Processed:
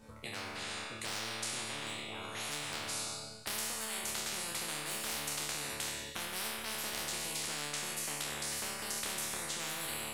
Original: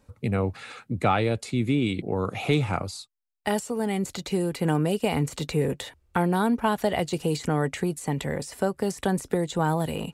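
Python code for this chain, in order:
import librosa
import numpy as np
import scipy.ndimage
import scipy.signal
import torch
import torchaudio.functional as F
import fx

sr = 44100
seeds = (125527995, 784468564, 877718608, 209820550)

p1 = np.minimum(x, 2.0 * 10.0 ** (-17.5 / 20.0) - x)
p2 = fx.over_compress(p1, sr, threshold_db=-26.0, ratio=-1.0)
p3 = p1 + (p2 * librosa.db_to_amplitude(2.5))
p4 = fx.resonator_bank(p3, sr, root=38, chord='fifth', decay_s=0.7)
p5 = fx.rev_schroeder(p4, sr, rt60_s=1.2, comb_ms=32, drr_db=9.0)
p6 = fx.spectral_comp(p5, sr, ratio=10.0)
y = p6 * librosa.db_to_amplitude(-4.5)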